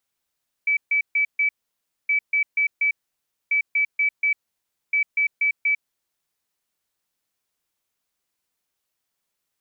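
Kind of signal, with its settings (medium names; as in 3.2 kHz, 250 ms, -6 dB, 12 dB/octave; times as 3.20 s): beep pattern sine 2.3 kHz, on 0.10 s, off 0.14 s, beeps 4, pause 0.60 s, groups 4, -17 dBFS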